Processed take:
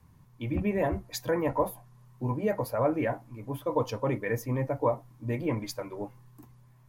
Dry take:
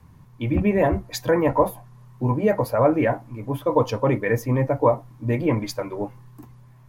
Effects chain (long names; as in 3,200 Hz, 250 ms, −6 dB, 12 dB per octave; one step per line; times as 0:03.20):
high-shelf EQ 5,100 Hz +5.5 dB
level −8.5 dB